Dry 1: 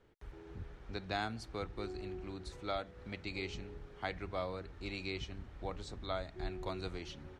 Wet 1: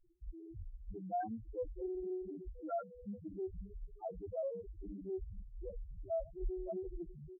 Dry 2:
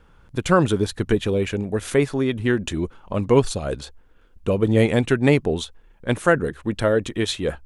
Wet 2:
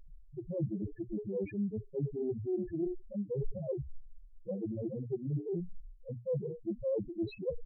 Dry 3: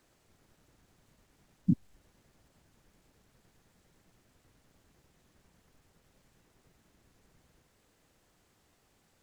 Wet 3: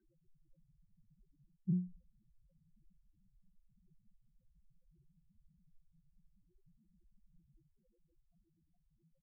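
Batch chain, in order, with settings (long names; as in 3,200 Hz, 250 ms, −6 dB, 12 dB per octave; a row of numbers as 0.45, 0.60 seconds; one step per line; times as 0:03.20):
low-pass filter 2,100 Hz 12 dB per octave
mains-hum notches 60/120/180/240/300/360/420/480 Hz
comb filter 5.8 ms, depth 34%
reversed playback
downward compressor 10 to 1, threshold −32 dBFS
reversed playback
spectral peaks only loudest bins 2
highs frequency-modulated by the lows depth 0.14 ms
level +5 dB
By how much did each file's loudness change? −1.5, −16.0, −6.5 LU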